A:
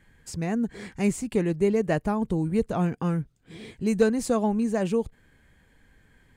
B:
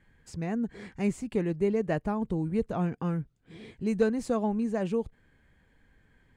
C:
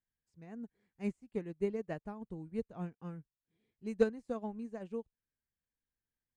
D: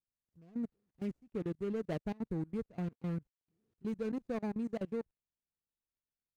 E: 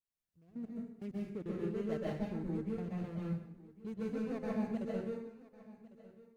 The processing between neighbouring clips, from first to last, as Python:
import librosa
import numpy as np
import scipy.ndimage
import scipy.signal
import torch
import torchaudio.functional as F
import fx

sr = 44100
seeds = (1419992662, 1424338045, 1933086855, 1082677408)

y1 = fx.lowpass(x, sr, hz=3600.0, slope=6)
y1 = y1 * 10.0 ** (-4.0 / 20.0)
y2 = fx.upward_expand(y1, sr, threshold_db=-41.0, expansion=2.5)
y2 = y2 * 10.0 ** (-2.0 / 20.0)
y3 = scipy.signal.medfilt(y2, 41)
y3 = fx.level_steps(y3, sr, step_db=23)
y3 = y3 * 10.0 ** (11.0 / 20.0)
y4 = y3 + 10.0 ** (-19.0 / 20.0) * np.pad(y3, (int(1102 * sr / 1000.0), 0))[:len(y3)]
y4 = fx.rev_plate(y4, sr, seeds[0], rt60_s=0.69, hf_ratio=0.95, predelay_ms=115, drr_db=-5.0)
y4 = y4 * 10.0 ** (-6.0 / 20.0)